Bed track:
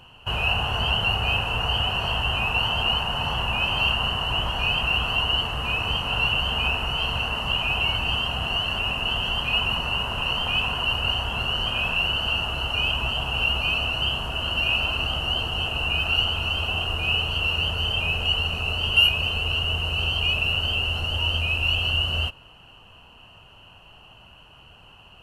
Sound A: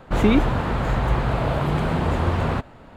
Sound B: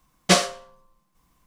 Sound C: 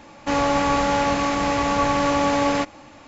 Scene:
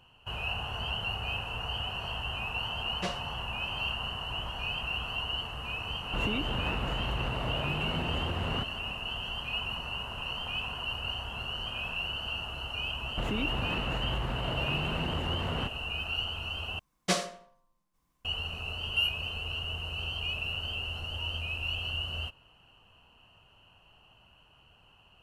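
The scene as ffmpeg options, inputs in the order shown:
ffmpeg -i bed.wav -i cue0.wav -i cue1.wav -filter_complex "[2:a]asplit=2[link_01][link_02];[1:a]asplit=2[link_03][link_04];[0:a]volume=-11dB[link_05];[link_01]equalizer=frequency=11000:width=0.39:gain=-12[link_06];[link_03]acompressor=threshold=-24dB:ratio=6:attack=3.2:release=140:knee=1:detection=peak[link_07];[link_04]acompressor=threshold=-22dB:ratio=6:attack=3.2:release=140:knee=1:detection=peak[link_08];[link_02]asplit=2[link_09][link_10];[link_10]adelay=80,lowpass=frequency=2700:poles=1,volume=-13dB,asplit=2[link_11][link_12];[link_12]adelay=80,lowpass=frequency=2700:poles=1,volume=0.39,asplit=2[link_13][link_14];[link_14]adelay=80,lowpass=frequency=2700:poles=1,volume=0.39,asplit=2[link_15][link_16];[link_16]adelay=80,lowpass=frequency=2700:poles=1,volume=0.39[link_17];[link_09][link_11][link_13][link_15][link_17]amix=inputs=5:normalize=0[link_18];[link_05]asplit=2[link_19][link_20];[link_19]atrim=end=16.794[link_21];[link_18]atrim=end=1.46,asetpts=PTS-STARTPTS,volume=-11dB[link_22];[link_20]atrim=start=18.246[link_23];[link_06]atrim=end=1.46,asetpts=PTS-STARTPTS,volume=-16.5dB,afade=type=in:duration=0.004:curve=hsin,afade=type=out:start_time=1.456:duration=0.004:curve=hsin,adelay=2730[link_24];[link_07]atrim=end=2.96,asetpts=PTS-STARTPTS,volume=-5.5dB,afade=type=in:duration=0.004:curve=hsin,afade=type=out:start_time=2.956:duration=0.004:curve=hsin,adelay=6030[link_25];[link_08]atrim=end=2.96,asetpts=PTS-STARTPTS,volume=-7dB,afade=type=in:duration=0.004:curve=hsin,afade=type=out:start_time=2.956:duration=0.004:curve=hsin,adelay=13070[link_26];[link_21][link_22]acrossfade=duration=0.004:curve1=hsin:curve2=hsin[link_27];[link_27][link_23]acrossfade=duration=0.004:curve1=hsin:curve2=hsin[link_28];[link_28][link_24][link_25][link_26]amix=inputs=4:normalize=0" out.wav

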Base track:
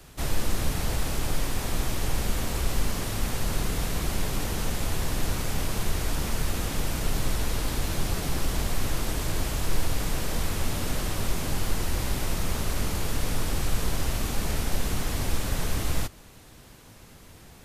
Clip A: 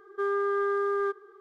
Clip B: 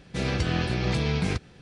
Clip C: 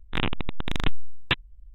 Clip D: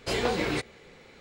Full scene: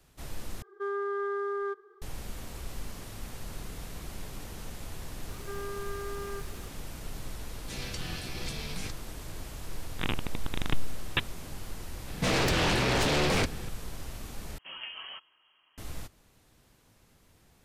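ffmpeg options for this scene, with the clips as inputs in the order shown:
ffmpeg -i bed.wav -i cue0.wav -i cue1.wav -i cue2.wav -i cue3.wav -filter_complex "[1:a]asplit=2[link_01][link_02];[2:a]asplit=2[link_03][link_04];[0:a]volume=-13dB[link_05];[link_02]aeval=exprs='val(0)+0.5*0.015*sgn(val(0))':channel_layout=same[link_06];[link_03]crystalizer=i=6:c=0[link_07];[link_04]aeval=exprs='0.188*sin(PI/2*4.47*val(0)/0.188)':channel_layout=same[link_08];[4:a]lowpass=frequency=2800:width_type=q:width=0.5098,lowpass=frequency=2800:width_type=q:width=0.6013,lowpass=frequency=2800:width_type=q:width=0.9,lowpass=frequency=2800:width_type=q:width=2.563,afreqshift=-3300[link_09];[link_05]asplit=3[link_10][link_11][link_12];[link_10]atrim=end=0.624[link_13];[link_01]atrim=end=1.4,asetpts=PTS-STARTPTS,volume=-5dB[link_14];[link_11]atrim=start=2.016:end=14.584[link_15];[link_09]atrim=end=1.2,asetpts=PTS-STARTPTS,volume=-14.5dB[link_16];[link_12]atrim=start=15.776[link_17];[link_06]atrim=end=1.4,asetpts=PTS-STARTPTS,volume=-13dB,afade=type=in:duration=0.004:curve=hsin,afade=type=out:start_time=1.396:duration=0.004:curve=hsin,adelay=233289S[link_18];[link_07]atrim=end=1.61,asetpts=PTS-STARTPTS,volume=-16.5dB,afade=type=in:duration=0.004:curve=hsin,afade=type=out:start_time=1.606:duration=0.004:curve=hsin,adelay=332514S[link_19];[3:a]atrim=end=1.74,asetpts=PTS-STARTPTS,volume=-5dB,afade=type=in:duration=0.004:curve=hsin,afade=type=out:start_time=1.736:duration=0.004:curve=hsin,adelay=434826S[link_20];[link_08]atrim=end=1.61,asetpts=PTS-STARTPTS,volume=-8.5dB,afade=type=in:duration=0.004:curve=hsin,afade=type=out:start_time=1.606:duration=0.004:curve=hsin,adelay=12080[link_21];[link_13][link_14]acrossfade=duration=0.004:curve1=hsin:curve2=hsin[link_22];[link_22][link_15]acrossfade=duration=0.004:curve1=hsin:curve2=hsin[link_23];[link_23][link_16]acrossfade=duration=0.004:curve1=hsin:curve2=hsin[link_24];[link_24][link_17]acrossfade=duration=0.004:curve1=hsin:curve2=hsin[link_25];[link_25][link_18][link_19][link_20][link_21]amix=inputs=5:normalize=0" out.wav

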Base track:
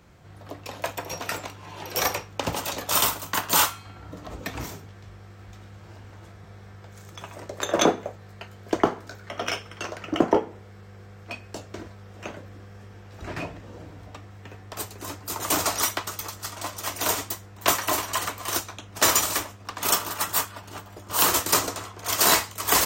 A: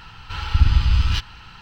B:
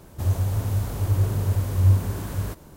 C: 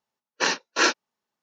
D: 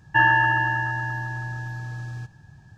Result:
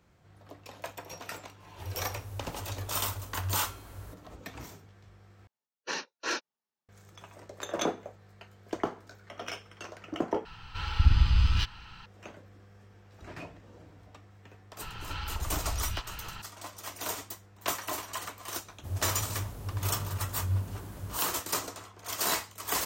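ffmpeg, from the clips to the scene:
ffmpeg -i bed.wav -i cue0.wav -i cue1.wav -i cue2.wav -filter_complex "[2:a]asplit=2[link_01][link_02];[1:a]asplit=2[link_03][link_04];[0:a]volume=-10.5dB[link_05];[link_01]equalizer=frequency=170:width_type=o:width=0.77:gain=-14[link_06];[3:a]asoftclip=type=tanh:threshold=-10dB[link_07];[link_04]acompressor=threshold=-32dB:ratio=6:attack=3.2:release=140:knee=1:detection=peak[link_08];[link_05]asplit=3[link_09][link_10][link_11];[link_09]atrim=end=5.474[link_12];[link_07]atrim=end=1.42,asetpts=PTS-STARTPTS,volume=-11dB[link_13];[link_10]atrim=start=6.886:end=10.454[link_14];[link_03]atrim=end=1.61,asetpts=PTS-STARTPTS,volume=-6dB[link_15];[link_11]atrim=start=12.056[link_16];[link_06]atrim=end=2.76,asetpts=PTS-STARTPTS,volume=-15dB,afade=type=in:duration=0.004:curve=hsin,afade=type=out:start_time=2.756:duration=0.004:curve=hsin,adelay=1600[link_17];[link_08]atrim=end=1.61,asetpts=PTS-STARTPTS,volume=-0.5dB,afade=type=in:duration=0.004:curve=hsin,afade=type=out:start_time=1.606:duration=0.004:curve=hsin,adelay=14810[link_18];[link_02]atrim=end=2.76,asetpts=PTS-STARTPTS,volume=-12.5dB,afade=type=in:duration=0.004:curve=hsin,afade=type=out:start_time=2.756:duration=0.004:curve=hsin,adelay=18650[link_19];[link_12][link_13]acrossfade=duration=0.004:curve1=hsin:curve2=hsin[link_20];[link_20][link_14]acrossfade=duration=0.004:curve1=hsin:curve2=hsin[link_21];[link_21][link_15]acrossfade=duration=0.004:curve1=hsin:curve2=hsin[link_22];[link_22][link_16]acrossfade=duration=0.004:curve1=hsin:curve2=hsin[link_23];[link_23][link_17][link_18][link_19]amix=inputs=4:normalize=0" out.wav

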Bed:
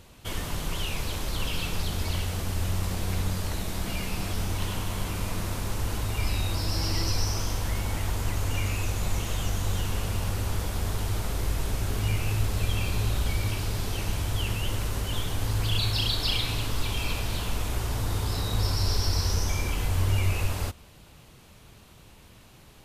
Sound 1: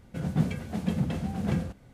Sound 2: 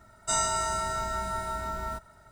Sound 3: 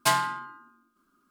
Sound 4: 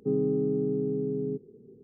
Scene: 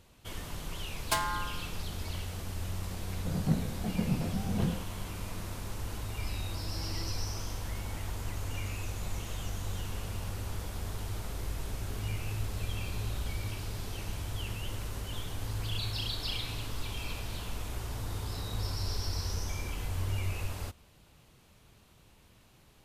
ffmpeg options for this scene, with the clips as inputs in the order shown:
ffmpeg -i bed.wav -i cue0.wav -i cue1.wav -i cue2.wav -filter_complex "[0:a]volume=-8.5dB[link_01];[3:a]acompressor=threshold=-28dB:ratio=5:attack=68:release=217:knee=1:detection=rms[link_02];[1:a]lowpass=1300[link_03];[link_02]atrim=end=1.3,asetpts=PTS-STARTPTS,volume=-2dB,afade=type=in:duration=0.004:curve=hsin,afade=type=out:start_time=1.296:duration=0.004:curve=hsin,adelay=1060[link_04];[link_03]atrim=end=1.93,asetpts=PTS-STARTPTS,volume=-3dB,afade=type=in:duration=0.004:curve=hsin,afade=type=out:start_time=1.926:duration=0.004:curve=hsin,adelay=3110[link_05];[link_01][link_04][link_05]amix=inputs=3:normalize=0" out.wav

